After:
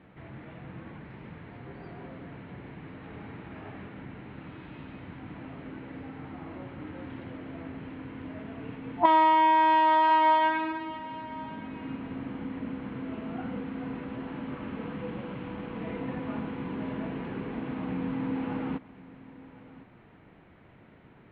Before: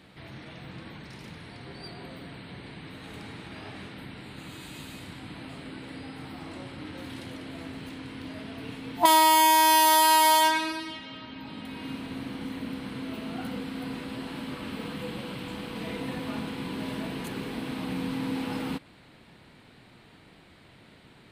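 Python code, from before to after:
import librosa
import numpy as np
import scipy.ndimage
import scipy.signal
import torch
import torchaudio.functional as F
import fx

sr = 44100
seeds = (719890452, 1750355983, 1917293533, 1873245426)

y = scipy.signal.sosfilt(scipy.signal.bessel(6, 1700.0, 'lowpass', norm='mag', fs=sr, output='sos'), x)
y = y + 10.0 ** (-19.0 / 20.0) * np.pad(y, (int(1059 * sr / 1000.0), 0))[:len(y)]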